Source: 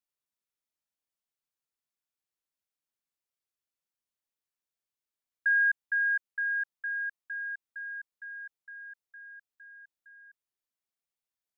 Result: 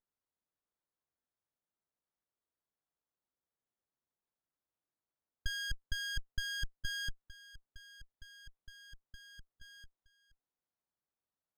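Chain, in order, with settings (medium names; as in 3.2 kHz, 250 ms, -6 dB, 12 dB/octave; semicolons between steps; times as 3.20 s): level held to a coarse grid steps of 17 dB; sliding maximum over 17 samples; trim +6 dB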